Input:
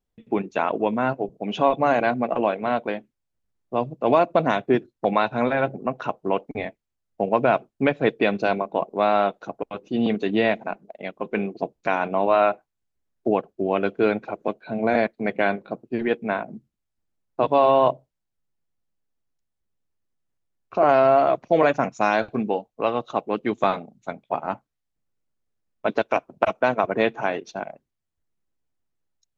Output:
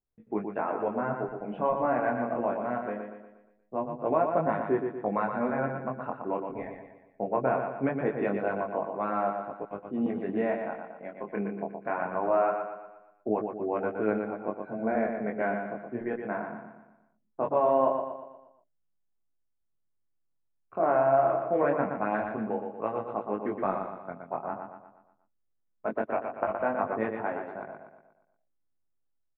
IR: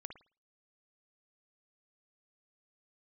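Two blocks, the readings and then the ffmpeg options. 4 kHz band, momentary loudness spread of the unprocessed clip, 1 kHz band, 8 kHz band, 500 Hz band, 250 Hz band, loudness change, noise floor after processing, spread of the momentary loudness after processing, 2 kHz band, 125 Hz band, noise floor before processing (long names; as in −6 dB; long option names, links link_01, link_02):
below −25 dB, 13 LU, −7.0 dB, can't be measured, −6.5 dB, −6.5 dB, −7.0 dB, −75 dBFS, 14 LU, −9.5 dB, −6.5 dB, −81 dBFS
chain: -af "flanger=delay=18.5:depth=6.2:speed=0.22,lowpass=frequency=1800:width=0.5412,lowpass=frequency=1800:width=1.3066,aecho=1:1:119|238|357|476|595|714:0.501|0.236|0.111|0.052|0.0245|0.0115,volume=-5dB"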